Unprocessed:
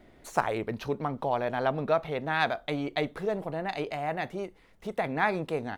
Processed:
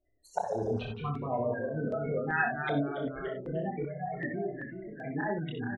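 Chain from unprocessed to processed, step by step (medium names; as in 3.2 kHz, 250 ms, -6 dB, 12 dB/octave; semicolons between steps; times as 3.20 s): spectral gate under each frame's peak -10 dB strong; spectral noise reduction 23 dB; dynamic bell 370 Hz, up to -4 dB, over -39 dBFS, Q 0.9; slow attack 113 ms; chorus voices 6, 0.49 Hz, delay 27 ms, depth 2.3 ms; ever faster or slower copies 123 ms, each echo -1 st, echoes 3, each echo -6 dB; on a send: early reflections 62 ms -6 dB, 74 ms -14.5 dB; on the sum: step-sequenced notch 2.6 Hz 210–4900 Hz; trim +6.5 dB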